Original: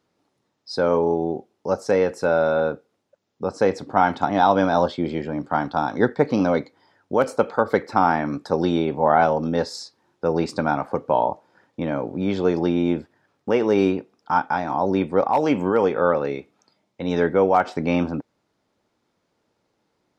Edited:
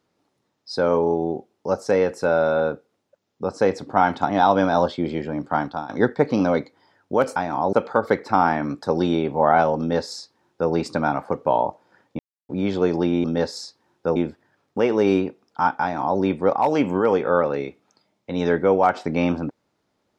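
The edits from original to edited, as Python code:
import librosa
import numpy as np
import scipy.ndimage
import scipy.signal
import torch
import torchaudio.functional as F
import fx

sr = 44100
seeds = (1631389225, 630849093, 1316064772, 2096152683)

y = fx.edit(x, sr, fx.fade_out_to(start_s=5.61, length_s=0.28, floor_db=-15.0),
    fx.duplicate(start_s=9.42, length_s=0.92, to_s=12.87),
    fx.silence(start_s=11.82, length_s=0.3),
    fx.duplicate(start_s=14.53, length_s=0.37, to_s=7.36), tone=tone)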